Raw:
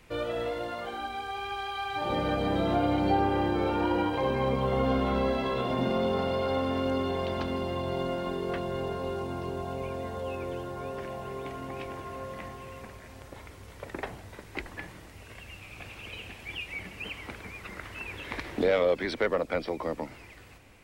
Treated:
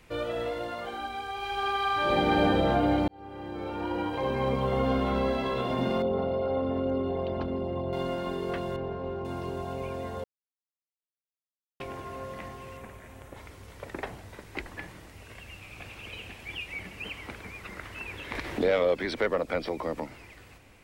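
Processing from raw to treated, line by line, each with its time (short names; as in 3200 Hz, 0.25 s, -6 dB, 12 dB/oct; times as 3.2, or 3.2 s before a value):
1.35–2.44 reverb throw, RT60 2.9 s, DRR -4 dB
3.08–4.49 fade in
6.02–7.93 formant sharpening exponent 1.5
8.76–9.25 tape spacing loss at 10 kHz 29 dB
10.24–11.8 mute
12.77–13.37 bell 4800 Hz -8.5 dB 0.66 oct
18.35–20.01 upward compressor, threshold -29 dBFS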